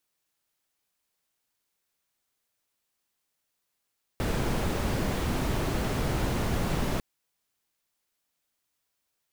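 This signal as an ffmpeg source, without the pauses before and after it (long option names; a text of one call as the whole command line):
ffmpeg -f lavfi -i "anoisesrc=color=brown:amplitude=0.197:duration=2.8:sample_rate=44100:seed=1" out.wav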